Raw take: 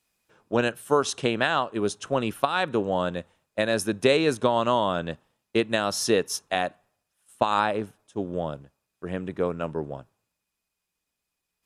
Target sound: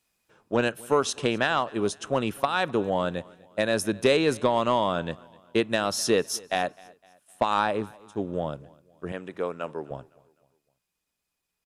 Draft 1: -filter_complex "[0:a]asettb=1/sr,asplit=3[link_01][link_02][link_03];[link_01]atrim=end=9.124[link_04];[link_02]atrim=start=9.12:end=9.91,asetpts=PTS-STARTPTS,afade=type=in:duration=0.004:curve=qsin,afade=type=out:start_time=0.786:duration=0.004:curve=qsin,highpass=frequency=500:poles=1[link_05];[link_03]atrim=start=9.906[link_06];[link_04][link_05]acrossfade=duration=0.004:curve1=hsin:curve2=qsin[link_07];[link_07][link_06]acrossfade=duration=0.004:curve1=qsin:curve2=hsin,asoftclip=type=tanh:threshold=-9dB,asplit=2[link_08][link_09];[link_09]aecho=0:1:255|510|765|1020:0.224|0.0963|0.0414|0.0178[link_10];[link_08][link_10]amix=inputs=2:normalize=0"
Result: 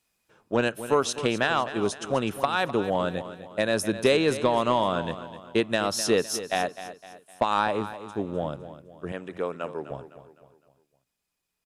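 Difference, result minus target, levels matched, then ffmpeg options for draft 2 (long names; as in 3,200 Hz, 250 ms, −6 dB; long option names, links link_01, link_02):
echo-to-direct +11 dB
-filter_complex "[0:a]asettb=1/sr,asplit=3[link_01][link_02][link_03];[link_01]atrim=end=9.124[link_04];[link_02]atrim=start=9.12:end=9.91,asetpts=PTS-STARTPTS,afade=type=in:duration=0.004:curve=qsin,afade=type=out:start_time=0.786:duration=0.004:curve=qsin,highpass=frequency=500:poles=1[link_05];[link_03]atrim=start=9.906[link_06];[link_04][link_05]acrossfade=duration=0.004:curve1=hsin:curve2=qsin[link_07];[link_07][link_06]acrossfade=duration=0.004:curve1=qsin:curve2=hsin,asoftclip=type=tanh:threshold=-9dB,asplit=2[link_08][link_09];[link_09]aecho=0:1:255|510|765:0.0631|0.0271|0.0117[link_10];[link_08][link_10]amix=inputs=2:normalize=0"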